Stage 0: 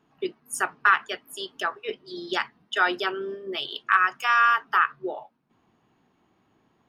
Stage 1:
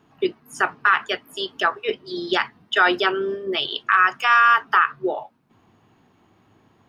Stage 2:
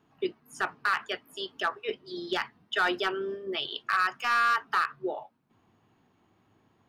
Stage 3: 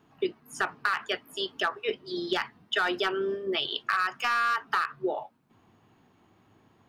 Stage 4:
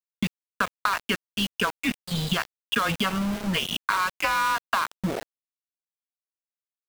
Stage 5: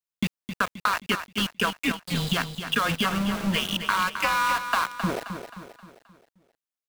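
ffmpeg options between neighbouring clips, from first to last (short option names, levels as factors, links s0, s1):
-filter_complex "[0:a]acrossover=split=5300[s0][s1];[s1]acompressor=threshold=0.00178:ratio=4:attack=1:release=60[s2];[s0][s2]amix=inputs=2:normalize=0,equalizer=f=100:t=o:w=0.35:g=9,alimiter=limit=0.211:level=0:latency=1:release=29,volume=2.37"
-af "volume=3.35,asoftclip=hard,volume=0.299,volume=0.376"
-af "acompressor=threshold=0.0398:ratio=5,volume=1.68"
-filter_complex "[0:a]afreqshift=-190,acrossover=split=1900|4000[s0][s1][s2];[s0]acompressor=threshold=0.0251:ratio=4[s3];[s1]acompressor=threshold=0.0178:ratio=4[s4];[s2]acompressor=threshold=0.00224:ratio=4[s5];[s3][s4][s5]amix=inputs=3:normalize=0,aeval=exprs='val(0)*gte(abs(val(0)),0.0158)':c=same,volume=2.51"
-af "aecho=1:1:264|528|792|1056|1320:0.355|0.163|0.0751|0.0345|0.0159"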